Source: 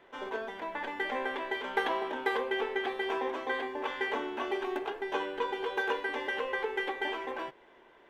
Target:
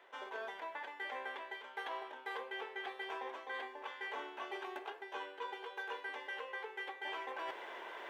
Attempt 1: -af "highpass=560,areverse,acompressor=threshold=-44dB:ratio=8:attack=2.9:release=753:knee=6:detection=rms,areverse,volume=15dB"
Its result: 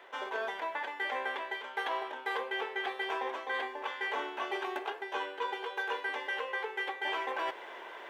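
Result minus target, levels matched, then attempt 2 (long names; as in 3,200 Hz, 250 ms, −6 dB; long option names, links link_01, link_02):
downward compressor: peak gain reduction −8.5 dB
-af "highpass=560,areverse,acompressor=threshold=-53.5dB:ratio=8:attack=2.9:release=753:knee=6:detection=rms,areverse,volume=15dB"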